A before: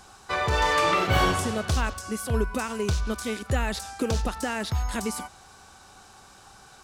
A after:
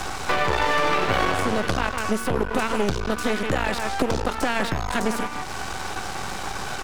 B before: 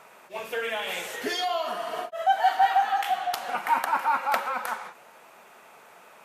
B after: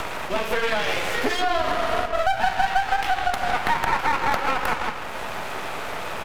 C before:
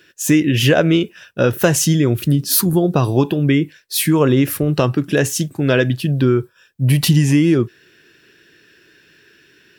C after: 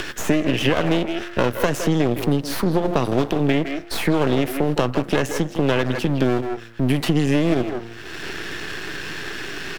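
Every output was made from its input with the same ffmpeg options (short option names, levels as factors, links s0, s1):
-filter_complex "[0:a]highshelf=f=5600:g=-9.5,bandreject=f=115.2:t=h:w=4,bandreject=f=230.4:t=h:w=4,bandreject=f=345.6:t=h:w=4,bandreject=f=460.8:t=h:w=4,bandreject=f=576:t=h:w=4,bandreject=f=691.2:t=h:w=4,bandreject=f=806.4:t=h:w=4,bandreject=f=921.6:t=h:w=4,bandreject=f=1036.8:t=h:w=4,bandreject=f=1152:t=h:w=4,bandreject=f=1267.2:t=h:w=4,bandreject=f=1382.4:t=h:w=4,bandreject=f=1497.6:t=h:w=4,bandreject=f=1612.8:t=h:w=4,bandreject=f=1728:t=h:w=4,bandreject=f=1843.2:t=h:w=4,bandreject=f=1958.4:t=h:w=4,bandreject=f=2073.6:t=h:w=4,bandreject=f=2188.8:t=h:w=4,bandreject=f=2304:t=h:w=4,asplit=2[s0][s1];[s1]adelay=160,highpass=300,lowpass=3400,asoftclip=type=hard:threshold=0.299,volume=0.355[s2];[s0][s2]amix=inputs=2:normalize=0,acompressor=mode=upward:threshold=0.158:ratio=2.5,aeval=exprs='max(val(0),0)':c=same,acrossover=split=190|2800[s3][s4][s5];[s3]acompressor=threshold=0.0224:ratio=4[s6];[s4]acompressor=threshold=0.0631:ratio=4[s7];[s5]acompressor=threshold=0.01:ratio=4[s8];[s6][s7][s8]amix=inputs=3:normalize=0,volume=2.11"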